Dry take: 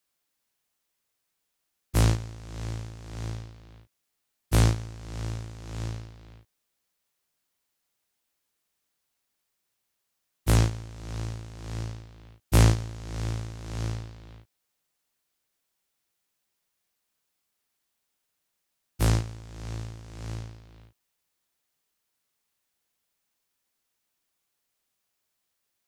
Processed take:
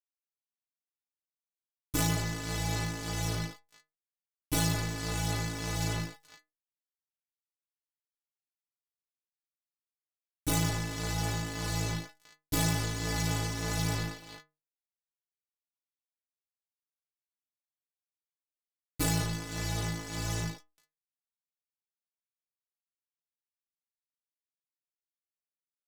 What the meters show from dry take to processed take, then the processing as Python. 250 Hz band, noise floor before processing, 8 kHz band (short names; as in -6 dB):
-0.5 dB, -80 dBFS, +3.5 dB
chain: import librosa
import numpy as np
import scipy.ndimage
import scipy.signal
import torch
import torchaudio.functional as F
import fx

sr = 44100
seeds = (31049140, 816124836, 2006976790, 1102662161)

y = fx.fuzz(x, sr, gain_db=40.0, gate_db=-43.0)
y = fx.stiff_resonator(y, sr, f0_hz=150.0, decay_s=0.3, stiffness=0.008)
y = F.gain(torch.from_numpy(y), 2.5).numpy()